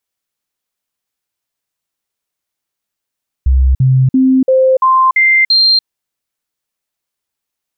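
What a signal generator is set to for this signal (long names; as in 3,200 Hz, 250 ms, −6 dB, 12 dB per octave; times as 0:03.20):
stepped sweep 65.3 Hz up, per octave 1, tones 7, 0.29 s, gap 0.05 s −6 dBFS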